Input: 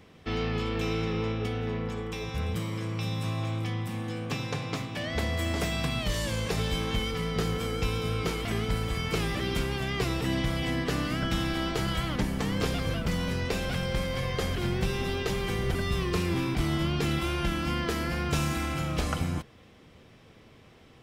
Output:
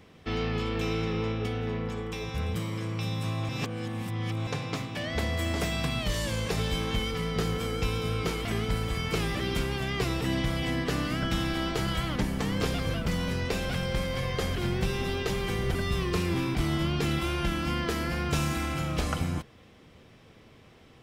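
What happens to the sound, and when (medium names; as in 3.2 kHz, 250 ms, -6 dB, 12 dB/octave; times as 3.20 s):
3.49–4.47 s: reverse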